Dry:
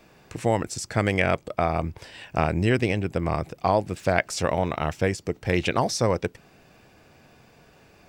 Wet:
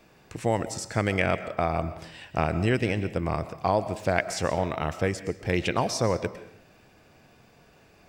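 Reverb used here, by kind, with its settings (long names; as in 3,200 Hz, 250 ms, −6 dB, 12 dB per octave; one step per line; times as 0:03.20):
comb and all-pass reverb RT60 0.7 s, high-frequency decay 0.85×, pre-delay 85 ms, DRR 12.5 dB
level −2.5 dB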